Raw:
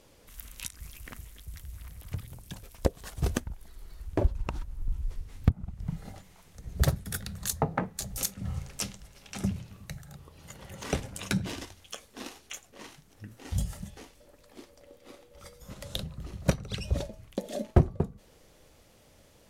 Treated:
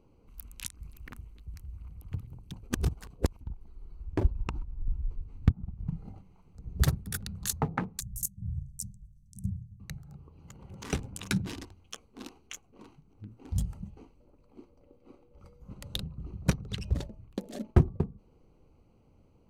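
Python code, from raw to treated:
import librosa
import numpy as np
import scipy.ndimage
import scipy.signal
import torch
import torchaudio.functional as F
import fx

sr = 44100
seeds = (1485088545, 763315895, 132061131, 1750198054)

y = fx.cheby2_bandstop(x, sr, low_hz=560.0, high_hz=2200.0, order=4, stop_db=70, at=(8.0, 9.8))
y = fx.edit(y, sr, fx.reverse_span(start_s=2.7, length_s=0.71), tone=tone)
y = fx.wiener(y, sr, points=25)
y = fx.peak_eq(y, sr, hz=600.0, db=-10.5, octaves=0.59)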